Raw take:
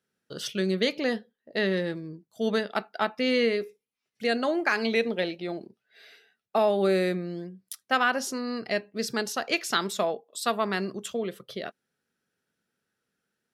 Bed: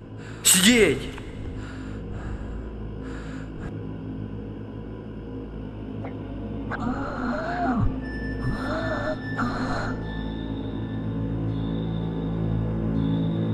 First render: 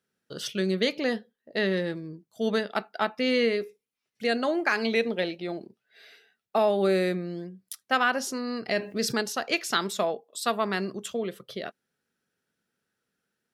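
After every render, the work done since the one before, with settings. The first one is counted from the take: 8.68–9.21 s: level flattener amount 50%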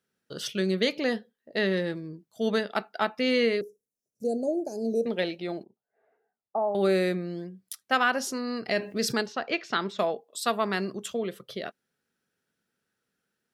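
3.61–5.06 s: elliptic band-stop 610–6100 Hz; 5.63–6.75 s: four-pole ladder low-pass 1 kHz, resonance 50%; 9.26–9.99 s: distance through air 200 m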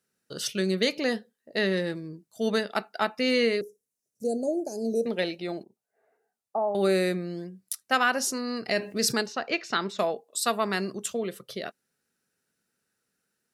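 peaking EQ 9.2 kHz +7.5 dB 1.6 oct; band-stop 3.3 kHz, Q 12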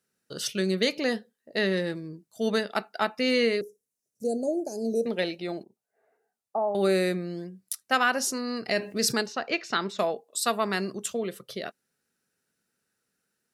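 no audible change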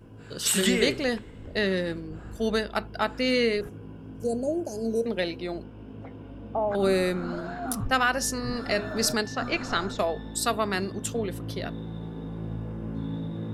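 add bed -8.5 dB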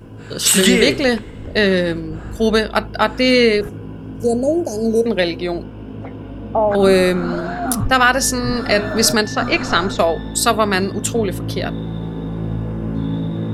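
trim +11 dB; peak limiter -1 dBFS, peak gain reduction 2.5 dB

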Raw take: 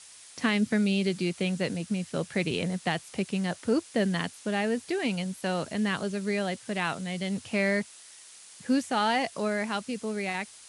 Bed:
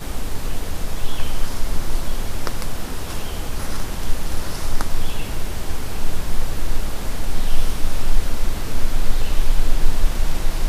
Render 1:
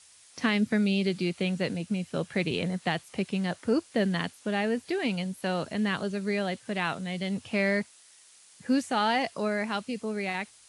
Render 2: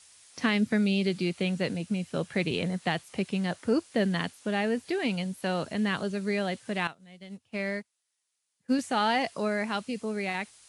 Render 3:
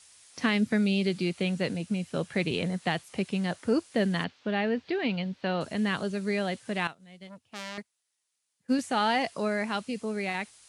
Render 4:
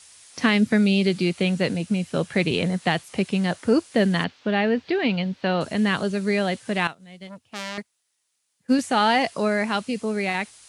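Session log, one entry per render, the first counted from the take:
noise print and reduce 6 dB
6.87–8.79 s: upward expansion 2.5:1, over -38 dBFS
4.24–5.61 s: low-pass 4.4 kHz 24 dB/octave; 7.27–7.78 s: transformer saturation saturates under 3.7 kHz
trim +6.5 dB

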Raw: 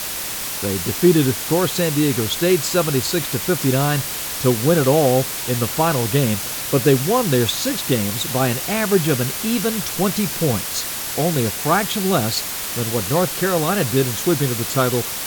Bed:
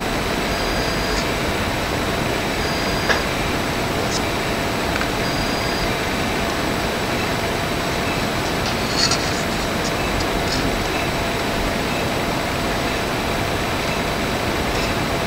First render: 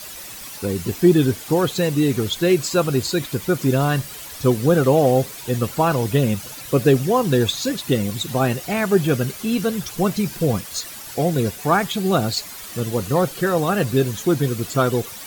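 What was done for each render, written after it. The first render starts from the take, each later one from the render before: noise reduction 12 dB, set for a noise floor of -27 dBFS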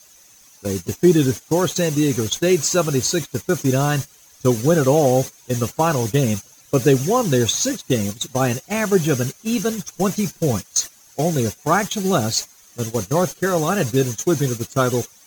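peaking EQ 6.3 kHz +14.5 dB 0.26 oct; gate -23 dBFS, range -17 dB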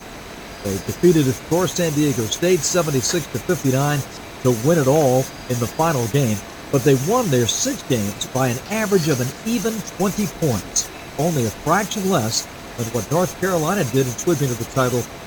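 add bed -14 dB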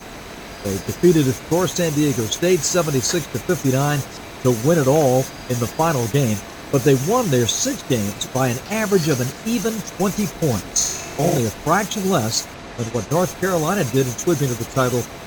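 10.75–11.38 s: flutter echo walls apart 7.3 m, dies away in 0.74 s; 12.54–13.11 s: distance through air 52 m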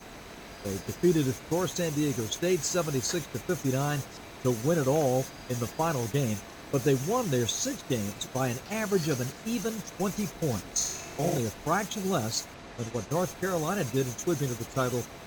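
trim -10 dB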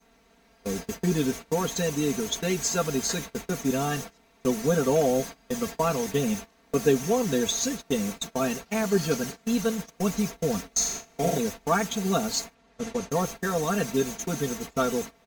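gate -37 dBFS, range -19 dB; comb 4.4 ms, depth 99%

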